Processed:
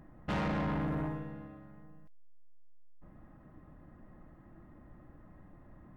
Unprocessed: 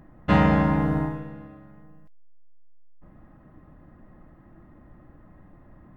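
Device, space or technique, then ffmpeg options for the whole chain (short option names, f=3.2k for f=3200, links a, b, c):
saturation between pre-emphasis and de-emphasis: -af "highshelf=f=4.3k:g=10,asoftclip=type=tanh:threshold=-26dB,highshelf=f=4.3k:g=-10,volume=-4.5dB"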